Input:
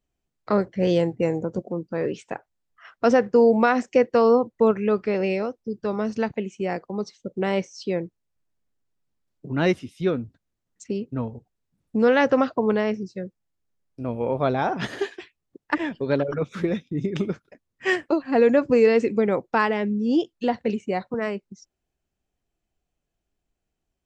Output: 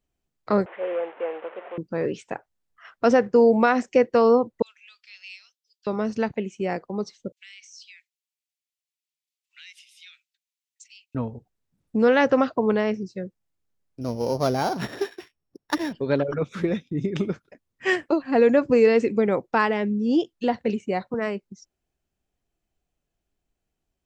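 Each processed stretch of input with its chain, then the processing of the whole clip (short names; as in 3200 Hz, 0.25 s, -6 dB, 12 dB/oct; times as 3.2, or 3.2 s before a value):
0.66–1.78 delta modulation 16 kbps, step -31 dBFS + HPF 500 Hz 24 dB/oct + air absorption 410 m
4.62–5.87 ladder high-pass 2700 Hz, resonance 40% + high shelf 4200 Hz +6.5 dB
7.32–11.15 steep high-pass 2200 Hz + compressor 5:1, threshold -42 dBFS
14.01–15.93 sample sorter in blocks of 8 samples + LPF 2700 Hz 6 dB/oct
whole clip: dry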